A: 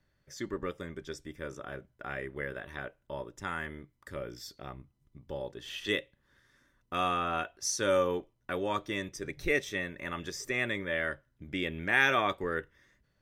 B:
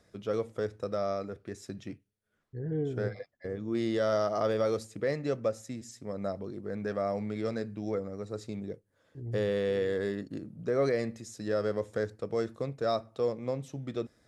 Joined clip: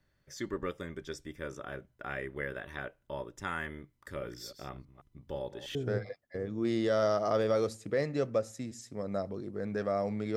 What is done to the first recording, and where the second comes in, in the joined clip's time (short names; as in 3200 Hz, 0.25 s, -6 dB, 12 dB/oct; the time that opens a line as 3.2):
A
3.88–5.75 reverse delay 0.162 s, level -12 dB
5.75 switch to B from 2.85 s